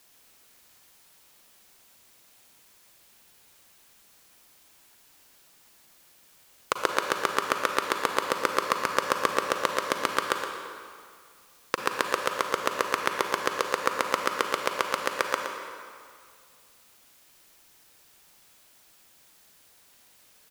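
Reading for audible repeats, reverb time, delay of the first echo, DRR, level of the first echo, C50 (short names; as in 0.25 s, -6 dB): 1, 2.1 s, 0.118 s, 2.5 dB, -9.0 dB, 2.5 dB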